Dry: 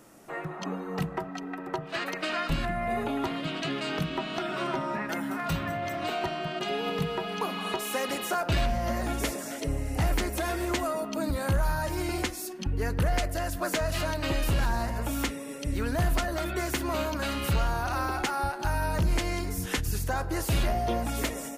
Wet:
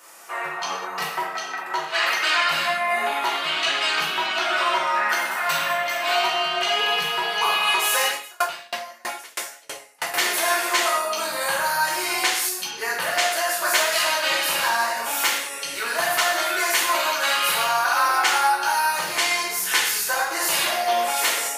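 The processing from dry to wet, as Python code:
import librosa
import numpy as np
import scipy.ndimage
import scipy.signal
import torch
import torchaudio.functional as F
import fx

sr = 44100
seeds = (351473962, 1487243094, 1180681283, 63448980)

y = scipy.signal.sosfilt(scipy.signal.butter(2, 970.0, 'highpass', fs=sr, output='sos'), x)
y = fx.rev_gated(y, sr, seeds[0], gate_ms=250, shape='falling', drr_db=-6.0)
y = fx.tremolo_decay(y, sr, direction='decaying', hz=3.1, depth_db=32, at=(8.08, 10.14))
y = y * librosa.db_to_amplitude(7.0)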